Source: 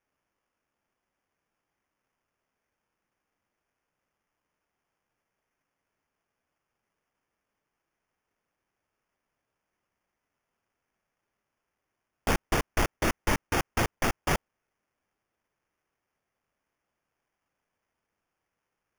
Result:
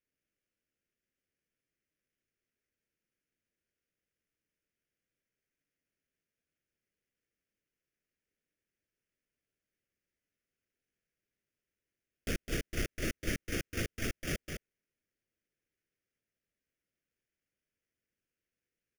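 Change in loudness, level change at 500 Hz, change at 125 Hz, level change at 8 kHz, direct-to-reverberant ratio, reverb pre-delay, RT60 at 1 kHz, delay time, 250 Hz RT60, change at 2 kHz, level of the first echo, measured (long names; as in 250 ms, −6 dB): −8.5 dB, −9.0 dB, −6.5 dB, −6.5 dB, no reverb audible, no reverb audible, no reverb audible, 209 ms, no reverb audible, −8.5 dB, −6.0 dB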